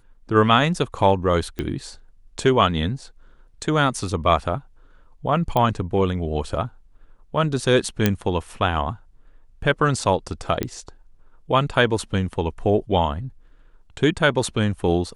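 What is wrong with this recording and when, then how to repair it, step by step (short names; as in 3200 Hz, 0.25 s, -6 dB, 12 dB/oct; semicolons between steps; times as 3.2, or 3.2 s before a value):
1.59 pop -14 dBFS
5.57 pop -9 dBFS
8.06 pop -3 dBFS
10.63 pop -10 dBFS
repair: de-click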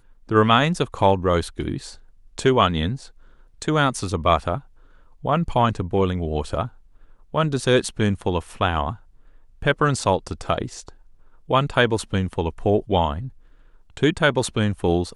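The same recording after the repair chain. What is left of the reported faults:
10.63 pop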